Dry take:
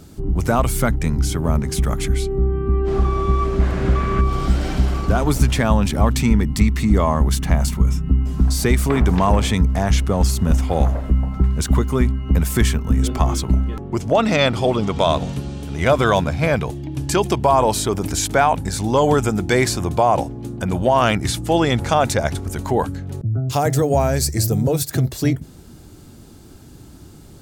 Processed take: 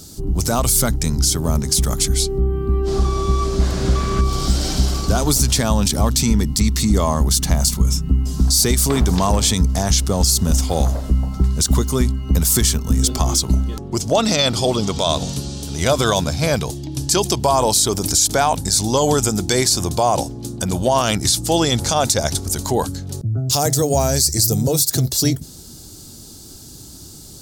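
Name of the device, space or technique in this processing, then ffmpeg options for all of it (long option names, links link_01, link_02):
over-bright horn tweeter: -af "highshelf=frequency=3300:width_type=q:width=1.5:gain=12.5,alimiter=limit=-5.5dB:level=0:latency=1:release=51"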